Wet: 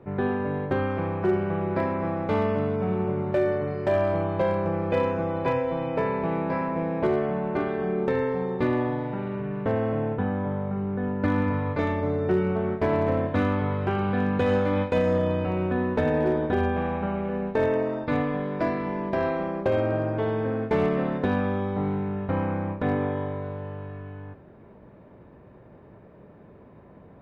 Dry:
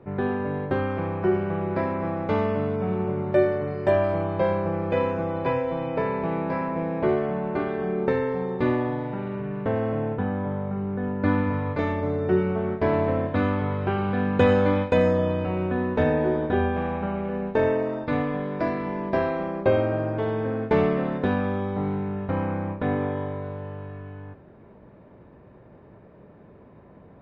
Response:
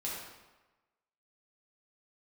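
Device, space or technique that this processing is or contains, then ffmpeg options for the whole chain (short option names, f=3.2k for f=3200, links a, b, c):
limiter into clipper: -af "alimiter=limit=-13.5dB:level=0:latency=1:release=114,asoftclip=type=hard:threshold=-16dB"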